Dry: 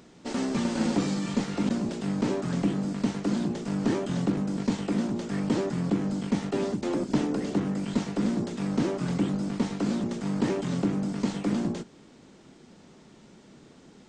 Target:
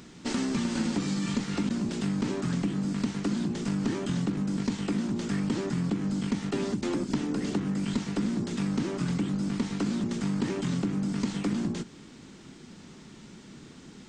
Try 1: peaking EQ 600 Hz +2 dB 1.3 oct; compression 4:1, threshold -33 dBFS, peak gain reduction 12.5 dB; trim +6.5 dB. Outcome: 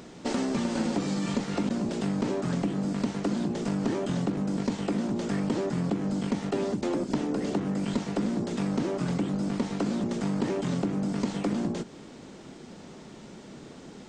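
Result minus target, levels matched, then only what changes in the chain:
500 Hz band +4.0 dB
change: peaking EQ 600 Hz -9 dB 1.3 oct

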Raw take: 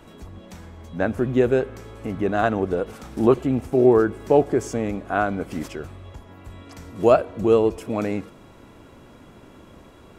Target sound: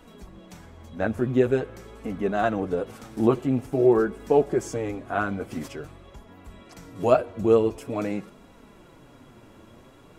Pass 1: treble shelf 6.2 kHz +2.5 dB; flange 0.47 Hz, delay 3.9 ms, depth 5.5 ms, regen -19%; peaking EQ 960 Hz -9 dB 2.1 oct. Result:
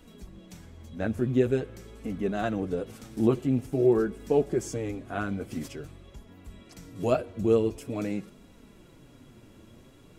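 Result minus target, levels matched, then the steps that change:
1 kHz band -4.5 dB
remove: peaking EQ 960 Hz -9 dB 2.1 oct

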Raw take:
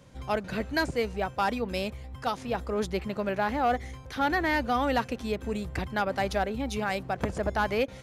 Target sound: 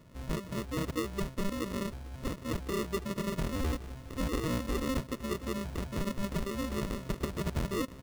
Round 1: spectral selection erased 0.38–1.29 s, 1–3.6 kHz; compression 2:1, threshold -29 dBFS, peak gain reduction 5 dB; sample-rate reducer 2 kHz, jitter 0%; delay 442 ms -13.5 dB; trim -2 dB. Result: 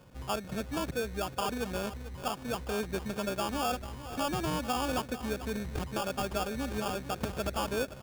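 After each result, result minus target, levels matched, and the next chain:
sample-rate reducer: distortion -12 dB; echo-to-direct +9.5 dB
spectral selection erased 0.38–1.29 s, 1–3.6 kHz; compression 2:1, threshold -29 dBFS, peak gain reduction 5 dB; sample-rate reducer 790 Hz, jitter 0%; delay 442 ms -13.5 dB; trim -2 dB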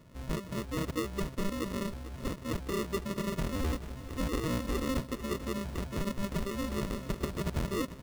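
echo-to-direct +9.5 dB
spectral selection erased 0.38–1.29 s, 1–3.6 kHz; compression 2:1, threshold -29 dBFS, peak gain reduction 5 dB; sample-rate reducer 790 Hz, jitter 0%; delay 442 ms -23 dB; trim -2 dB

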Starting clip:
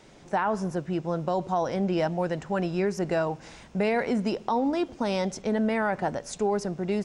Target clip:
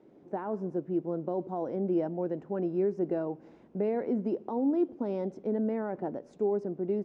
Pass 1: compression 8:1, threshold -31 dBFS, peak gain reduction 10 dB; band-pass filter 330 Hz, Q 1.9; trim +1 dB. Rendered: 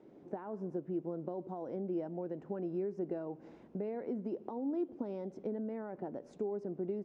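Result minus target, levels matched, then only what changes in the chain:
compression: peak gain reduction +10 dB
remove: compression 8:1, threshold -31 dBFS, peak gain reduction 10 dB

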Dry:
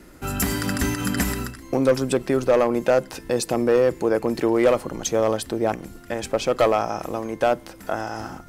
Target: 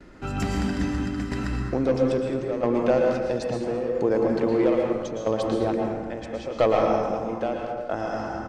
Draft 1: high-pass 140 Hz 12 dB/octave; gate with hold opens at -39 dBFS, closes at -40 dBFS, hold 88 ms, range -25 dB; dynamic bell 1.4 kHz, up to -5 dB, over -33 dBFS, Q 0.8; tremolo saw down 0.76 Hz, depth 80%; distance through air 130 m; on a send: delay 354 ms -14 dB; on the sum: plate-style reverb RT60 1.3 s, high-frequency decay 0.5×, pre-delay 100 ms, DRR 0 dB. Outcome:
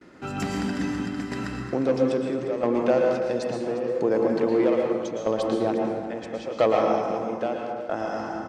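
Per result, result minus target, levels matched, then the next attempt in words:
echo 140 ms late; 125 Hz band -4.5 dB
high-pass 140 Hz 12 dB/octave; gate with hold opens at -39 dBFS, closes at -40 dBFS, hold 88 ms, range -25 dB; dynamic bell 1.4 kHz, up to -5 dB, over -33 dBFS, Q 0.8; tremolo saw down 0.76 Hz, depth 80%; distance through air 130 m; on a send: delay 214 ms -14 dB; on the sum: plate-style reverb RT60 1.3 s, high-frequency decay 0.5×, pre-delay 100 ms, DRR 0 dB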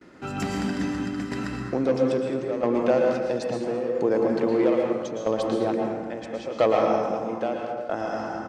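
125 Hz band -4.0 dB
gate with hold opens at -39 dBFS, closes at -40 dBFS, hold 88 ms, range -25 dB; dynamic bell 1.4 kHz, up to -5 dB, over -33 dBFS, Q 0.8; tremolo saw down 0.76 Hz, depth 80%; distance through air 130 m; on a send: delay 214 ms -14 dB; on the sum: plate-style reverb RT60 1.3 s, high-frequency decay 0.5×, pre-delay 100 ms, DRR 0 dB

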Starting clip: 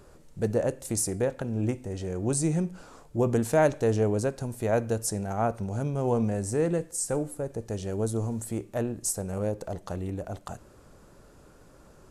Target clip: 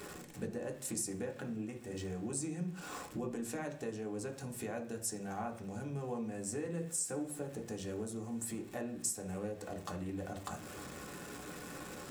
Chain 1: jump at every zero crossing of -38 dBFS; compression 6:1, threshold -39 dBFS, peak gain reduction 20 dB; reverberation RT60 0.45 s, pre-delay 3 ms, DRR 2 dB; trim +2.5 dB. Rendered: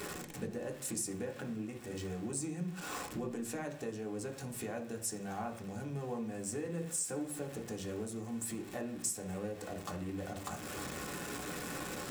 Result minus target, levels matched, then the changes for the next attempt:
jump at every zero crossing: distortion +7 dB
change: jump at every zero crossing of -46 dBFS

